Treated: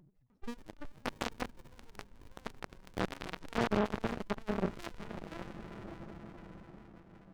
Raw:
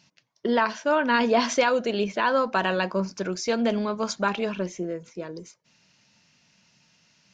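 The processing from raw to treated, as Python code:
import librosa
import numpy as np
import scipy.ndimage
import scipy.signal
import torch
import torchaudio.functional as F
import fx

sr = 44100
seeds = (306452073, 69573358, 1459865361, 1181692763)

y = scipy.signal.sosfilt(scipy.signal.butter(2, 3000.0, 'lowpass', fs=sr, output='sos'), x)
y = fx.spec_topn(y, sr, count=2)
y = fx.echo_pitch(y, sr, ms=301, semitones=5, count=3, db_per_echo=-6.0)
y = fx.peak_eq(y, sr, hz=850.0, db=12.5, octaves=0.65)
y = fx.notch(y, sr, hz=1300.0, q=14.0)
y = fx.echo_diffused(y, sr, ms=584, feedback_pct=41, wet_db=-10.0)
y = fx.tube_stage(y, sr, drive_db=38.0, bias=0.75)
y = fx.running_max(y, sr, window=65)
y = y * librosa.db_to_amplitude(14.0)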